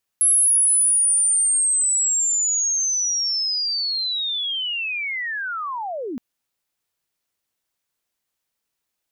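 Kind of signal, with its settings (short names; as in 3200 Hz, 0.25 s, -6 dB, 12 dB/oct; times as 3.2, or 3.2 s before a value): chirp linear 11000 Hz -> 220 Hz -13 dBFS -> -26 dBFS 5.97 s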